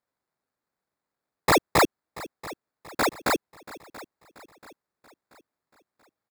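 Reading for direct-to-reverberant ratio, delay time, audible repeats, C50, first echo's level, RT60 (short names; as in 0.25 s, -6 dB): none, 0.683 s, 3, none, -18.5 dB, none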